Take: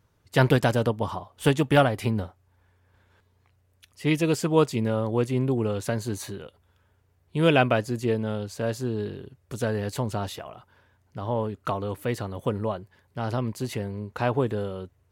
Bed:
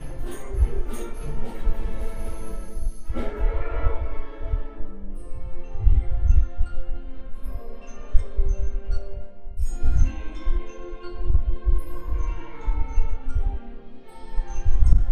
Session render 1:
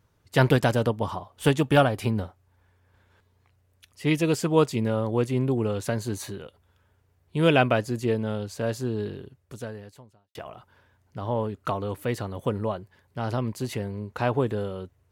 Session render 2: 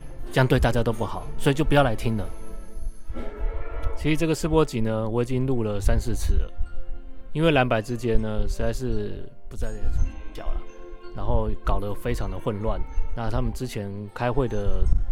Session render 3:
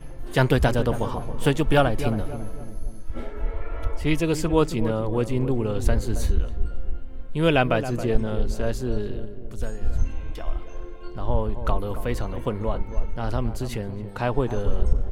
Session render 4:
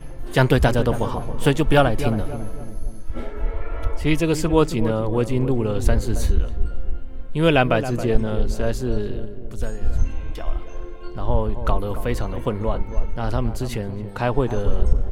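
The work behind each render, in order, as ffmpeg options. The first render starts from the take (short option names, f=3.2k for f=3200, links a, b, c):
-filter_complex "[0:a]asettb=1/sr,asplit=3[a][b][c];[a]atrim=end=1.604[d];[b]atrim=start=1.6:end=2.1,asetpts=PTS-STARTPTS,afade=t=in:d=0.004:c=qsin,afade=t=out:st=0.496:d=0.004:c=qsin,bandreject=f=2k:w=9.6[e];[c]atrim=start=2.096[f];[d][e]acrossfade=d=0.004:c1=hsin:c2=qsin[g];[g][f]acrossfade=d=0.004:c1=qsin:c2=hsin,asplit=2[h][i];[h]atrim=end=10.35,asetpts=PTS-STARTPTS,afade=t=out:st=9.19:d=1.16:c=qua[j];[i]atrim=start=10.35,asetpts=PTS-STARTPTS,afade=t=in:d=0.004:c=hsin[k];[j][k]concat=n=2:v=0:a=1"
-filter_complex "[1:a]volume=-5dB[a];[0:a][a]amix=inputs=2:normalize=0"
-filter_complex "[0:a]asplit=2[a][b];[b]adelay=273,lowpass=f=950:p=1,volume=-10dB,asplit=2[c][d];[d]adelay=273,lowpass=f=950:p=1,volume=0.49,asplit=2[e][f];[f]adelay=273,lowpass=f=950:p=1,volume=0.49,asplit=2[g][h];[h]adelay=273,lowpass=f=950:p=1,volume=0.49,asplit=2[i][j];[j]adelay=273,lowpass=f=950:p=1,volume=0.49[k];[a][c][e][g][i][k]amix=inputs=6:normalize=0"
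-af "volume=3dB"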